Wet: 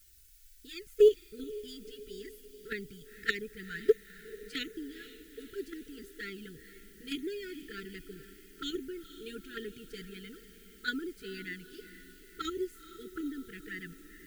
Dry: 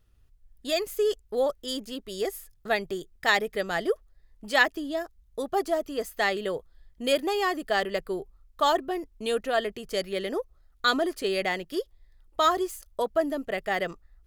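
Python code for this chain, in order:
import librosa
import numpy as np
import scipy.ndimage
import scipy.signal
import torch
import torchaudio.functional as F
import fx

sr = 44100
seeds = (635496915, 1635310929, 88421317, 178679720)

p1 = fx.high_shelf(x, sr, hz=2200.0, db=-9.5)
p2 = fx.level_steps(p1, sr, step_db=23)
p3 = p1 + (p2 * 10.0 ** (2.0 / 20.0))
p4 = fx.dmg_noise_colour(p3, sr, seeds[0], colour='blue', level_db=-51.0)
p5 = fx.env_flanger(p4, sr, rest_ms=2.9, full_db=-16.5)
p6 = fx.brickwall_bandstop(p5, sr, low_hz=470.0, high_hz=1300.0)
p7 = p6 + fx.echo_diffused(p6, sr, ms=466, feedback_pct=57, wet_db=-13.5, dry=0)
y = fx.upward_expand(p7, sr, threshold_db=-30.0, expansion=1.5)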